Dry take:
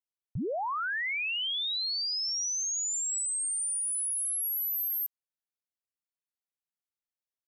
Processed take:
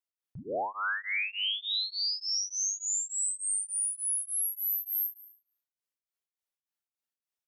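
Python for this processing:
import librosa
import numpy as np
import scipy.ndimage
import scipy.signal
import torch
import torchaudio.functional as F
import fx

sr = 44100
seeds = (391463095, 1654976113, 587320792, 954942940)

p1 = fx.low_shelf(x, sr, hz=130.0, db=-11.5)
p2 = p1 + fx.room_flutter(p1, sr, wall_m=6.2, rt60_s=0.58, dry=0)
y = p2 * np.abs(np.cos(np.pi * 3.4 * np.arange(len(p2)) / sr))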